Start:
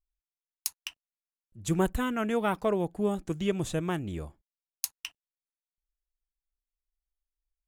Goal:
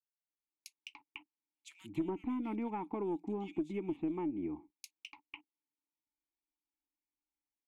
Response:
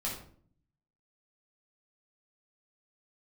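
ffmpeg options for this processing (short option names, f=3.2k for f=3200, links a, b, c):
-filter_complex "[0:a]asplit=3[a][b][c];[a]bandpass=f=300:t=q:w=8,volume=0dB[d];[b]bandpass=f=870:t=q:w=8,volume=-6dB[e];[c]bandpass=f=2.24k:t=q:w=8,volume=-9dB[f];[d][e][f]amix=inputs=3:normalize=0,aeval=exprs='0.0531*(cos(1*acos(clip(val(0)/0.0531,-1,1)))-cos(1*PI/2))+0.00299*(cos(4*acos(clip(val(0)/0.0531,-1,1)))-cos(4*PI/2))+0.00531*(cos(5*acos(clip(val(0)/0.0531,-1,1)))-cos(5*PI/2))+0.00299*(cos(7*acos(clip(val(0)/0.0531,-1,1)))-cos(7*PI/2))':c=same,acrossover=split=2700[g][h];[g]adelay=290[i];[i][h]amix=inputs=2:normalize=0,acompressor=threshold=-49dB:ratio=5,equalizer=f=320:w=1.5:g=4,dynaudnorm=f=210:g=5:m=11.5dB"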